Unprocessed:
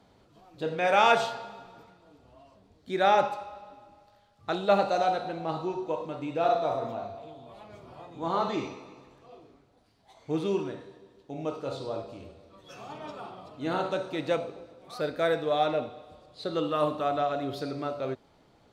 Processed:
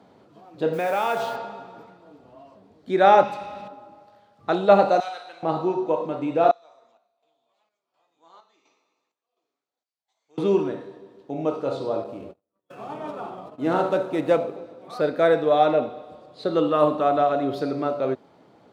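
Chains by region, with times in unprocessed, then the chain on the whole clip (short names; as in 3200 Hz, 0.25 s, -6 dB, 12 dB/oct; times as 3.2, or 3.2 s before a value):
0.73–1.36 compressor 3:1, threshold -30 dBFS + modulation noise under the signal 17 dB
3.23–3.68 band shelf 700 Hz -9 dB 2.4 oct + fast leveller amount 50%
5–5.43 differentiator + overdrive pedal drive 12 dB, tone 4500 Hz, clips at -25.5 dBFS + doubler 47 ms -11.5 dB
6.51–10.38 band-pass 7400 Hz, Q 3.2 + air absorption 120 m + chopper 1.4 Hz, depth 65%, duty 65%
12.04–14.57 median filter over 9 samples + gate -49 dBFS, range -37 dB
whole clip: HPF 170 Hz 12 dB/oct; high shelf 2000 Hz -10.5 dB; gain +9 dB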